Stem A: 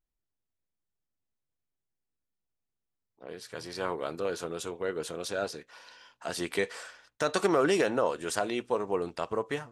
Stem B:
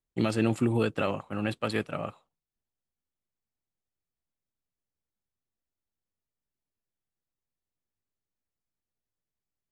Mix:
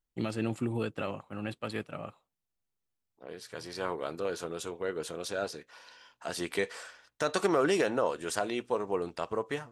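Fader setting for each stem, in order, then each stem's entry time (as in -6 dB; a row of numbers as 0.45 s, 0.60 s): -1.5 dB, -6.5 dB; 0.00 s, 0.00 s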